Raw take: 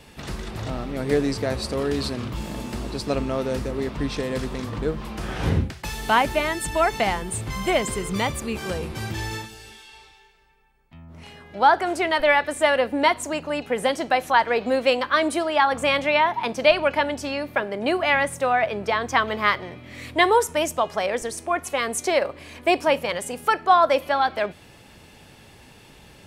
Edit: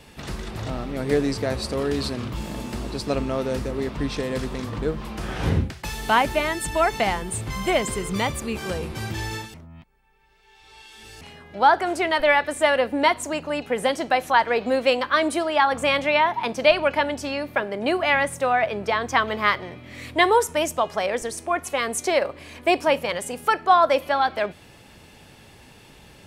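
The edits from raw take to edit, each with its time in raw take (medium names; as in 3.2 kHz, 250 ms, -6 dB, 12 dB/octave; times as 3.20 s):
9.54–11.21 s: reverse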